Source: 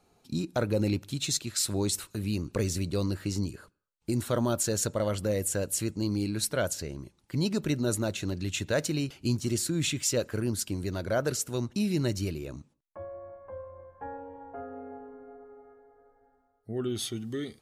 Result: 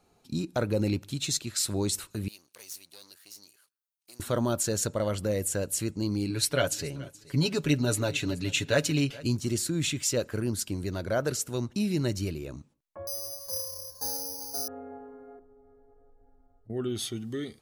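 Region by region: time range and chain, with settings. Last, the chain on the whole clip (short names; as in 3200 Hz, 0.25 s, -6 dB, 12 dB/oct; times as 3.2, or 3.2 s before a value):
2.28–4.2 half-wave gain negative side -12 dB + differentiator + notch 7500 Hz, Q 6.4
6.29–9.27 dynamic EQ 2700 Hz, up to +6 dB, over -49 dBFS, Q 1.1 + comb 7.1 ms, depth 67% + feedback echo 0.426 s, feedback 31%, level -20.5 dB
13.07–14.68 block floating point 7-bit + tape spacing loss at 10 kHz 37 dB + careless resampling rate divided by 8×, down none, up zero stuff
15.39–16.7 tilt -4.5 dB/oct + notches 60/120/180/240/300/360/420/480 Hz + compressor 4:1, threshold -56 dBFS
whole clip: dry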